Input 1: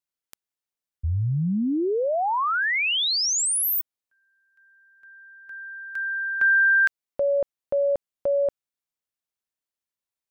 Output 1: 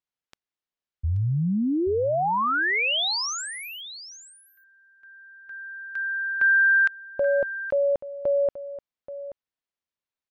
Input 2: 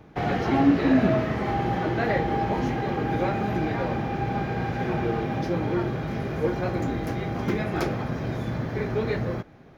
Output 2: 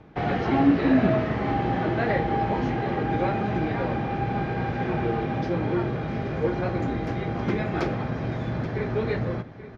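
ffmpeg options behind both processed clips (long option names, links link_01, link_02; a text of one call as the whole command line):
ffmpeg -i in.wav -af "lowpass=4500,aecho=1:1:830:0.2" out.wav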